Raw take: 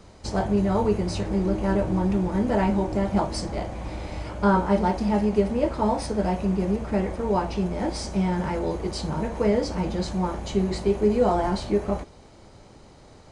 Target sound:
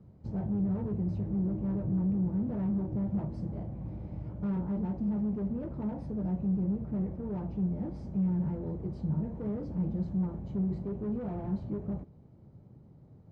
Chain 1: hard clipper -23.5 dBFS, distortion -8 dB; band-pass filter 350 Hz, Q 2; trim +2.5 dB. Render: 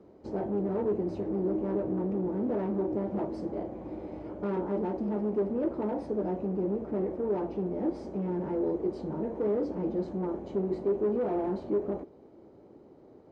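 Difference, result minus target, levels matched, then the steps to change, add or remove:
125 Hz band -8.5 dB
change: band-pass filter 140 Hz, Q 2

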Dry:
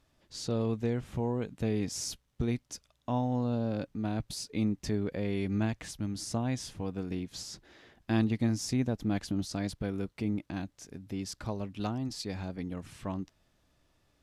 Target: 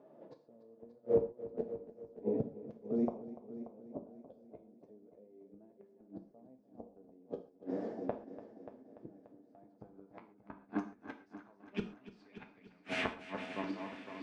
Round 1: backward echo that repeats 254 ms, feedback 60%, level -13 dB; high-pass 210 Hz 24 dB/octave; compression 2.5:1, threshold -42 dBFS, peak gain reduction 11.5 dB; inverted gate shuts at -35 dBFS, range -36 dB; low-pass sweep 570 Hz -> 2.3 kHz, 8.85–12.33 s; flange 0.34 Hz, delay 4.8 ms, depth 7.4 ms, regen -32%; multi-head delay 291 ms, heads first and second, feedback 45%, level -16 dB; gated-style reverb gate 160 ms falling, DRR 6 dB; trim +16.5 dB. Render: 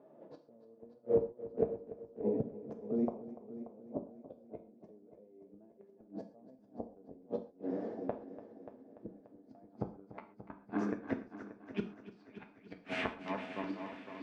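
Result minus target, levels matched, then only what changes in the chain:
4 kHz band -3.0 dB
add after compression: treble shelf 4.5 kHz +8 dB

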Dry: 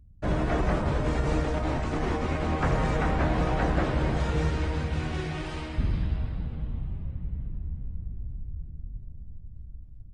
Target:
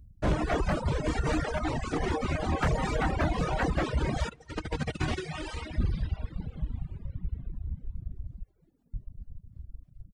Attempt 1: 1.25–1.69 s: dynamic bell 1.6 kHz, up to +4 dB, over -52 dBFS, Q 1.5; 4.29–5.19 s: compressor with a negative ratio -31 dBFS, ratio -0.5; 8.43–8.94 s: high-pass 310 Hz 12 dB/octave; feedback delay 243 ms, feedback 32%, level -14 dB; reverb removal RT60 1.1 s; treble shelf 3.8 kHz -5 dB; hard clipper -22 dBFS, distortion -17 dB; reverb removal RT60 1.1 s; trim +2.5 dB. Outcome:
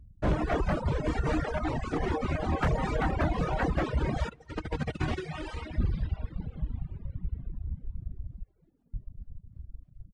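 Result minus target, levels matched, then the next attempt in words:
8 kHz band -7.0 dB
1.25–1.69 s: dynamic bell 1.6 kHz, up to +4 dB, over -52 dBFS, Q 1.5; 4.29–5.19 s: compressor with a negative ratio -31 dBFS, ratio -0.5; 8.43–8.94 s: high-pass 310 Hz 12 dB/octave; feedback delay 243 ms, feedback 32%, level -14 dB; reverb removal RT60 1.1 s; treble shelf 3.8 kHz +4.5 dB; hard clipper -22 dBFS, distortion -17 dB; reverb removal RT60 1.1 s; trim +2.5 dB

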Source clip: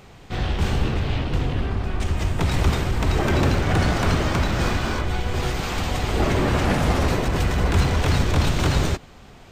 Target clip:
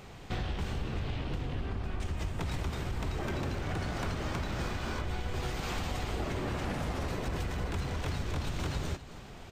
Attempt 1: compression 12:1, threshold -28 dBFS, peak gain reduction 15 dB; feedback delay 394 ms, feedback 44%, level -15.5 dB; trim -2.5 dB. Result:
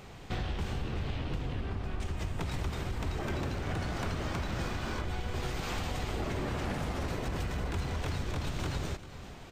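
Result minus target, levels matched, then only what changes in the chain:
echo 133 ms late
change: feedback delay 261 ms, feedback 44%, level -15.5 dB

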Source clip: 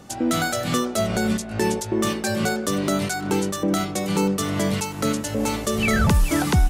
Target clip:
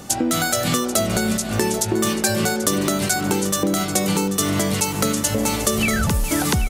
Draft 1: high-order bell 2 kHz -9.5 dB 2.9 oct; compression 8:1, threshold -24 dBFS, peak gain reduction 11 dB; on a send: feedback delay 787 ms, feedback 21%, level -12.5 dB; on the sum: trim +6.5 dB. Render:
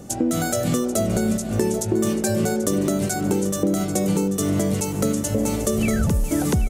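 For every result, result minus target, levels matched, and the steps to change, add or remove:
2 kHz band -7.0 dB; 8 kHz band -4.0 dB
remove: high-order bell 2 kHz -9.5 dB 2.9 oct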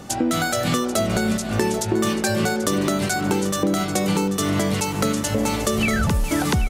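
8 kHz band -4.5 dB
add after compression: treble shelf 5.6 kHz +9 dB

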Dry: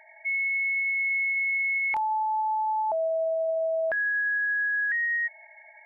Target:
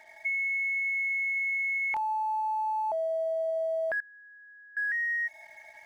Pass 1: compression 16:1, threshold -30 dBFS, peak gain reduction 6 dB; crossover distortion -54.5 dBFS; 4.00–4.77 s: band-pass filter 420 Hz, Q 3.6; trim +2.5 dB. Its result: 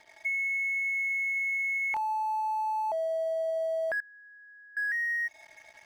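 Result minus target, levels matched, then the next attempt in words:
crossover distortion: distortion +8 dB
compression 16:1, threshold -30 dBFS, peak gain reduction 6 dB; crossover distortion -62.5 dBFS; 4.00–4.77 s: band-pass filter 420 Hz, Q 3.6; trim +2.5 dB

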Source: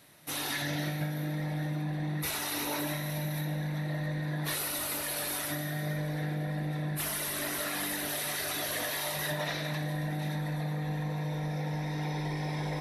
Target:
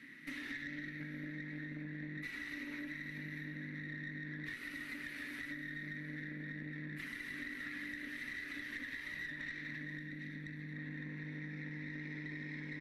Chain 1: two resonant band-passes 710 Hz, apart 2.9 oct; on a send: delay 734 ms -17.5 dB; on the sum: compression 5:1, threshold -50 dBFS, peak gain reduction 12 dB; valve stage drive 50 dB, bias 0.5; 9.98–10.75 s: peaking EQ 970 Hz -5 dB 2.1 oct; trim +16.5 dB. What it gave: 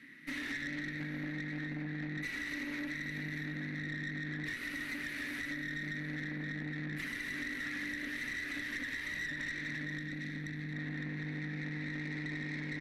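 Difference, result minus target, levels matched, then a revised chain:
compression: peak gain reduction -6.5 dB
two resonant band-passes 710 Hz, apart 2.9 oct; on a send: delay 734 ms -17.5 dB; on the sum: compression 5:1, threshold -58 dBFS, peak gain reduction 18 dB; valve stage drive 50 dB, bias 0.5; 9.98–10.75 s: peaking EQ 970 Hz -5 dB 2.1 oct; trim +16.5 dB

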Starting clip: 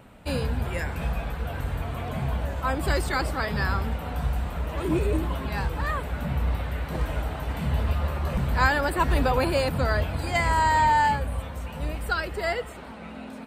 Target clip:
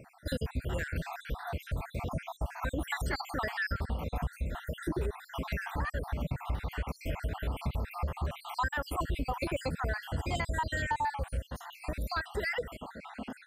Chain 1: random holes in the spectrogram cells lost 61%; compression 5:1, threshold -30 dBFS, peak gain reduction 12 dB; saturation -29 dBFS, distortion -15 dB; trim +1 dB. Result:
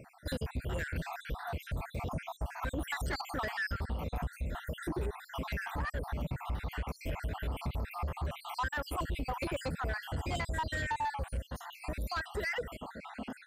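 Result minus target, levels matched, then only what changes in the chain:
saturation: distortion +18 dB
change: saturation -17.5 dBFS, distortion -33 dB

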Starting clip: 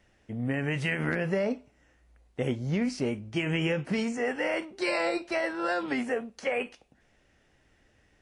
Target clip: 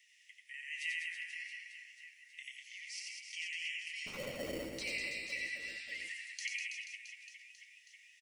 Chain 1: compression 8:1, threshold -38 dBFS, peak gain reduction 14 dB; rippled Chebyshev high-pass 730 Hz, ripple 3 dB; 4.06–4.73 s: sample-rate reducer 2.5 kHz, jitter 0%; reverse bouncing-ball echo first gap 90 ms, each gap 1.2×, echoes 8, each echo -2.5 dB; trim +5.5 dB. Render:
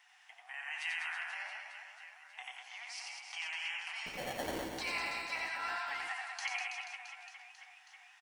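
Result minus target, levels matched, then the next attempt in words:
1 kHz band +17.5 dB
compression 8:1, threshold -38 dBFS, peak gain reduction 14 dB; rippled Chebyshev high-pass 1.9 kHz, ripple 3 dB; 4.06–4.73 s: sample-rate reducer 2.5 kHz, jitter 0%; reverse bouncing-ball echo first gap 90 ms, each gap 1.2×, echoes 8, each echo -2.5 dB; trim +5.5 dB

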